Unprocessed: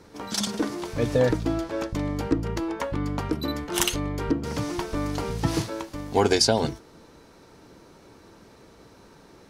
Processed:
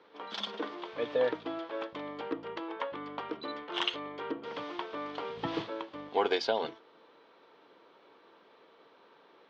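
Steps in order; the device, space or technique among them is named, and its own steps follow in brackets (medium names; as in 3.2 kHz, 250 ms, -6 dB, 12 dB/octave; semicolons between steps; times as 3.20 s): phone earpiece (cabinet simulation 440–3600 Hz, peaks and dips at 470 Hz +3 dB, 1.1 kHz +4 dB, 3.3 kHz +7 dB); 5.37–6.09 s: bass shelf 260 Hz +11.5 dB; trim -6.5 dB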